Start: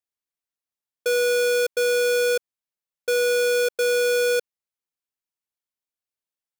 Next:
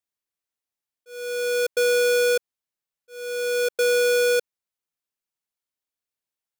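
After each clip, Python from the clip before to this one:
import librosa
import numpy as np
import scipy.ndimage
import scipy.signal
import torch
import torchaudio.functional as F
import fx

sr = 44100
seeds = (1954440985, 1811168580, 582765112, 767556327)

y = fx.auto_swell(x, sr, attack_ms=733.0)
y = F.gain(torch.from_numpy(y), 1.0).numpy()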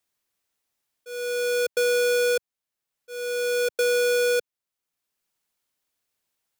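y = fx.band_squash(x, sr, depth_pct=40)
y = F.gain(torch.from_numpy(y), -2.0).numpy()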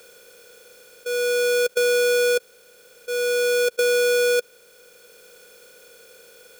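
y = fx.bin_compress(x, sr, power=0.4)
y = F.gain(torch.from_numpy(y), 2.0).numpy()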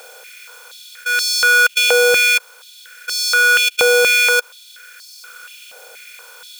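y = fx.filter_held_highpass(x, sr, hz=4.2, low_hz=750.0, high_hz=4700.0)
y = F.gain(torch.from_numpy(y), 8.5).numpy()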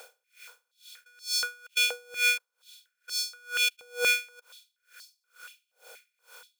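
y = x * 10.0 ** (-35 * (0.5 - 0.5 * np.cos(2.0 * np.pi * 2.2 * np.arange(len(x)) / sr)) / 20.0)
y = F.gain(torch.from_numpy(y), -8.0).numpy()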